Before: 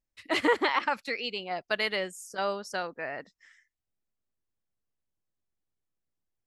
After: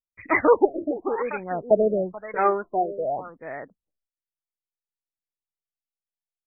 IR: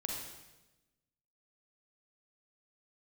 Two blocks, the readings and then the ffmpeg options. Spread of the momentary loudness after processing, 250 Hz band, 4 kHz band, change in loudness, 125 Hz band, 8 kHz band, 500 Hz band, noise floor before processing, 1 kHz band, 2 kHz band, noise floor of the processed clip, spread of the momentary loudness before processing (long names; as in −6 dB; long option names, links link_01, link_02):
16 LU, +8.0 dB, below −40 dB, +6.5 dB, +10.5 dB, below −30 dB, +10.5 dB, below −85 dBFS, +6.5 dB, 0.0 dB, below −85 dBFS, 11 LU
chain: -filter_complex "[0:a]agate=range=-33dB:threshold=-57dB:ratio=3:detection=peak,acrossover=split=2400[link_01][link_02];[link_01]aecho=1:1:434:0.237[link_03];[link_02]asoftclip=type=tanh:threshold=-33.5dB[link_04];[link_03][link_04]amix=inputs=2:normalize=0,aphaser=in_gain=1:out_gain=1:delay=2.9:decay=0.6:speed=0.56:type=sinusoidal,afftfilt=real='re*lt(b*sr/1024,650*pow(2600/650,0.5+0.5*sin(2*PI*0.93*pts/sr)))':imag='im*lt(b*sr/1024,650*pow(2600/650,0.5+0.5*sin(2*PI*0.93*pts/sr)))':win_size=1024:overlap=0.75,volume=8dB"